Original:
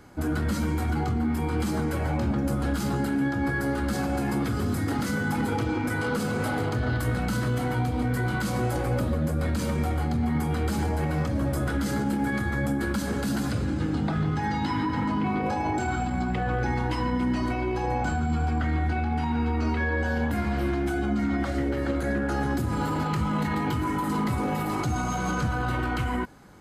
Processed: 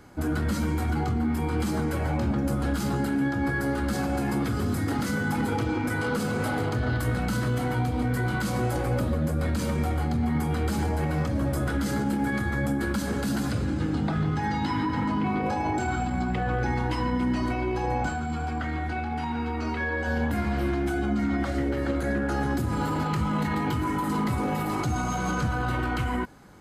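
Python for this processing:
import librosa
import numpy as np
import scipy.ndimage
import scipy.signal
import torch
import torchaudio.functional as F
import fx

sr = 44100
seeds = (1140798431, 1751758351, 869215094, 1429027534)

y = fx.low_shelf(x, sr, hz=250.0, db=-7.0, at=(18.07, 20.07))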